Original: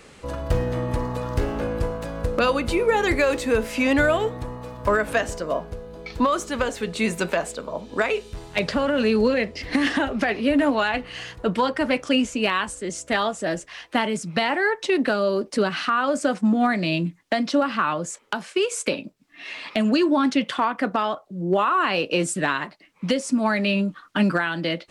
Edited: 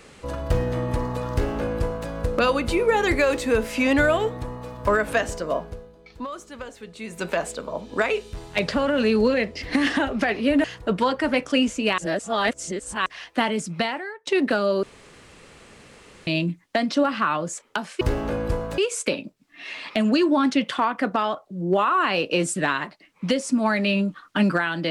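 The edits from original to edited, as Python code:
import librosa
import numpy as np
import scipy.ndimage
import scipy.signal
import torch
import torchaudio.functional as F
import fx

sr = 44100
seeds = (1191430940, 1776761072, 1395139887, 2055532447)

y = fx.edit(x, sr, fx.duplicate(start_s=1.32, length_s=0.77, to_s=18.58),
    fx.fade_down_up(start_s=5.52, length_s=2.0, db=-12.5, fade_s=0.43, curve='qsin'),
    fx.cut(start_s=10.64, length_s=0.57),
    fx.reverse_span(start_s=12.55, length_s=1.08),
    fx.fade_out_to(start_s=14.34, length_s=0.5, curve='qua', floor_db=-20.5),
    fx.room_tone_fill(start_s=15.4, length_s=1.44), tone=tone)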